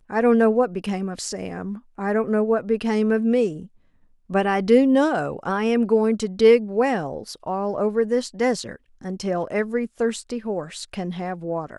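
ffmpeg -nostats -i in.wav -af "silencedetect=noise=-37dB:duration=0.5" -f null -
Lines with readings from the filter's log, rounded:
silence_start: 3.66
silence_end: 4.30 | silence_duration: 0.64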